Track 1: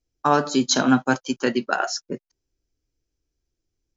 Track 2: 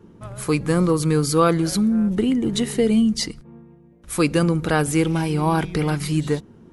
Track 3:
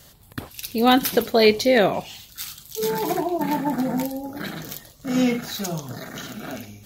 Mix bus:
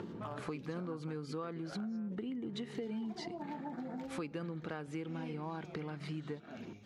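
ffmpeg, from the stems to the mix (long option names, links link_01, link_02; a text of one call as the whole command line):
ffmpeg -i stem1.wav -i stem2.wav -i stem3.wav -filter_complex "[0:a]lowpass=2100,acompressor=threshold=-23dB:ratio=4,asoftclip=type=hard:threshold=-17dB,volume=-14.5dB[link_01];[1:a]acompressor=mode=upward:threshold=-35dB:ratio=2.5,volume=-0.5dB[link_02];[2:a]volume=-8dB,asplit=3[link_03][link_04][link_05];[link_03]atrim=end=0.8,asetpts=PTS-STARTPTS,afade=type=out:start_time=0.796:duration=0.004:curve=hsin[link_06];[link_04]atrim=start=0.8:end=2.6,asetpts=PTS-STARTPTS,volume=0[link_07];[link_05]atrim=start=2.6,asetpts=PTS-STARTPTS,afade=type=in:duration=0.004:curve=hsin[link_08];[link_06][link_07][link_08]concat=n=3:v=0:a=1[link_09];[link_02][link_09]amix=inputs=2:normalize=0,highpass=140,lowpass=3300,acompressor=threshold=-41dB:ratio=1.5,volume=0dB[link_10];[link_01][link_10]amix=inputs=2:normalize=0,acompressor=threshold=-40dB:ratio=4" out.wav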